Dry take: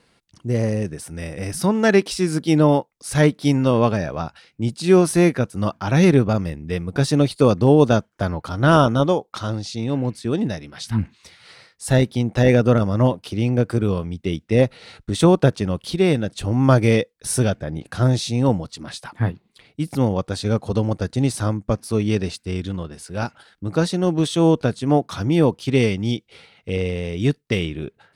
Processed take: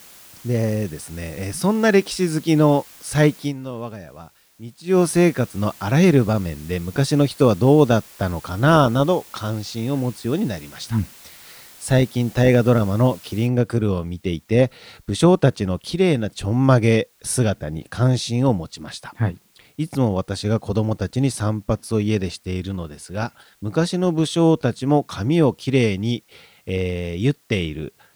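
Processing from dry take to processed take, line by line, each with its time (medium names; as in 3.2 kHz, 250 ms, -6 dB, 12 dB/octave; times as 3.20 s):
3.37–5.02 s: dip -13.5 dB, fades 0.17 s
13.47 s: noise floor step -45 dB -60 dB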